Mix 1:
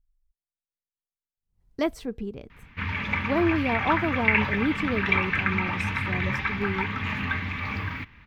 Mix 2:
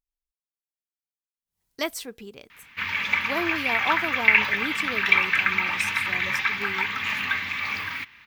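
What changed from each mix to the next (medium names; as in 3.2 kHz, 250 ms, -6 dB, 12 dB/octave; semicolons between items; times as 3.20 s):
master: add tilt EQ +4.5 dB/octave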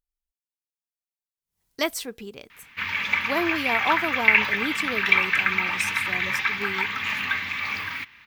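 speech +3.0 dB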